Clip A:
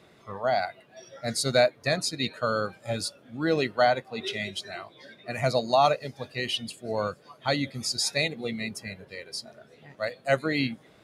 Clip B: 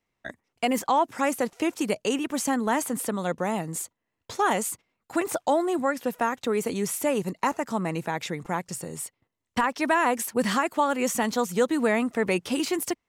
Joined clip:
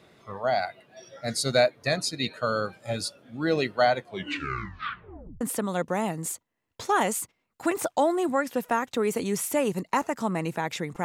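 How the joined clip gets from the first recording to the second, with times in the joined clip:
clip A
3.96 s: tape stop 1.45 s
5.41 s: go over to clip B from 2.91 s

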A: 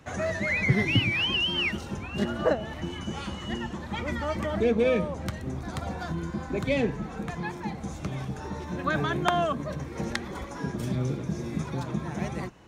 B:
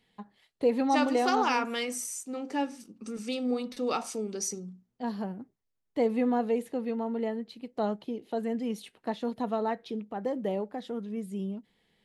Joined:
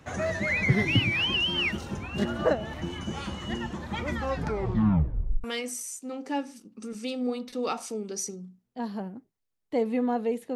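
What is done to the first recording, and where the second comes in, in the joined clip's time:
A
4.14 s: tape stop 1.30 s
5.44 s: go over to B from 1.68 s

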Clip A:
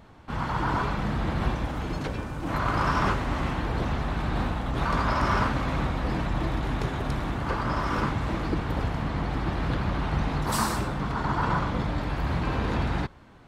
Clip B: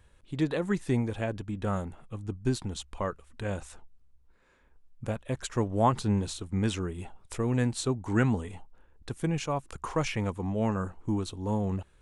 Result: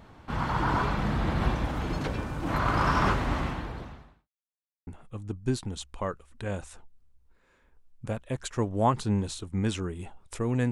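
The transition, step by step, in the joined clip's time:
clip A
3.32–4.29 s: fade out quadratic
4.29–4.87 s: mute
4.87 s: go over to clip B from 1.86 s

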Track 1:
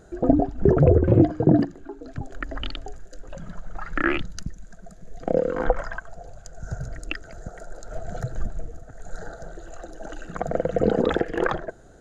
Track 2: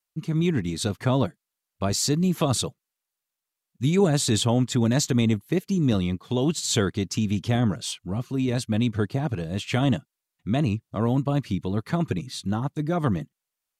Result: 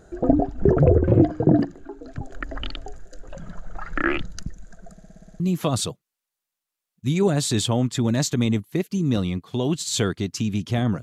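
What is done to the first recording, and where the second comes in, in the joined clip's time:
track 1
4.92 s: stutter in place 0.06 s, 8 plays
5.40 s: go over to track 2 from 2.17 s

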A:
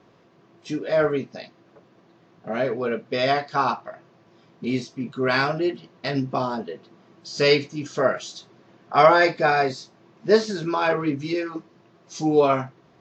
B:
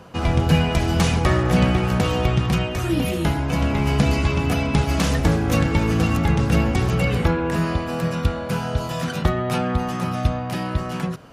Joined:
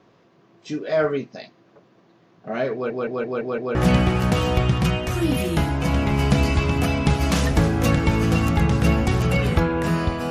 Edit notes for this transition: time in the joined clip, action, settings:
A
2.73 s: stutter in place 0.17 s, 6 plays
3.75 s: go over to B from 1.43 s

